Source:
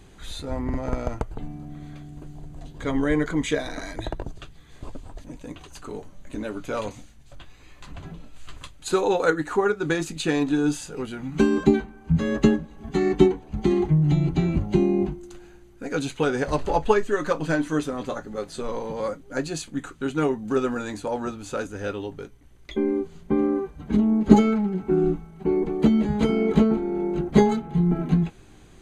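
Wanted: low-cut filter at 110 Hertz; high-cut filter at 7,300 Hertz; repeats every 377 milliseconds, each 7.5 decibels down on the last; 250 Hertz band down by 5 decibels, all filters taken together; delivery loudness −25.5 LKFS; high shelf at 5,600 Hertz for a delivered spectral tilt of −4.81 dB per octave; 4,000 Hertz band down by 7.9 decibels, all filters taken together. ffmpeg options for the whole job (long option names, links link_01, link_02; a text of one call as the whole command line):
ffmpeg -i in.wav -af "highpass=110,lowpass=7300,equalizer=frequency=250:width_type=o:gain=-6.5,equalizer=frequency=4000:width_type=o:gain=-8,highshelf=frequency=5600:gain=-4.5,aecho=1:1:377|754|1131|1508|1885:0.422|0.177|0.0744|0.0312|0.0131,volume=1.5dB" out.wav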